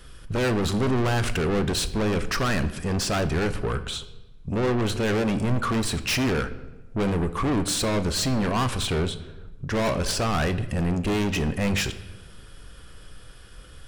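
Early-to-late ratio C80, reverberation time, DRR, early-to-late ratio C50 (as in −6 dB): 15.5 dB, 1.1 s, 10.0 dB, 14.0 dB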